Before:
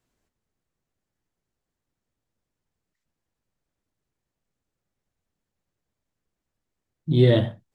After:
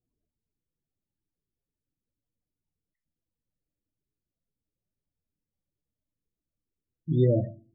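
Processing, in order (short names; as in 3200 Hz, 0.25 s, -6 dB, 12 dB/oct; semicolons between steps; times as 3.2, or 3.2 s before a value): FDN reverb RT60 0.52 s, low-frequency decay 1.3×, high-frequency decay 0.95×, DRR 16.5 dB; vibrato 9.9 Hz 25 cents; loudest bins only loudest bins 16; gain -5 dB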